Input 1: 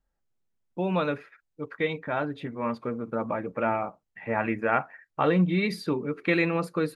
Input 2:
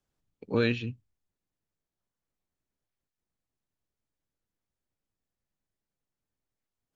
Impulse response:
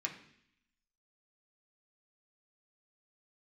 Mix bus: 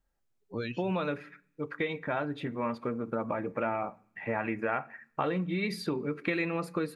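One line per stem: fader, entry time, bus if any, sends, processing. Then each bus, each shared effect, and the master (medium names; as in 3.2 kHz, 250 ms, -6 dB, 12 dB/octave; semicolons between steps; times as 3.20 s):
0.0 dB, 0.00 s, send -14 dB, compression 4:1, threshold -29 dBFS, peak gain reduction 10 dB
-7.0 dB, 0.00 s, send -17 dB, expander on every frequency bin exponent 3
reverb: on, RT60 0.65 s, pre-delay 3 ms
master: none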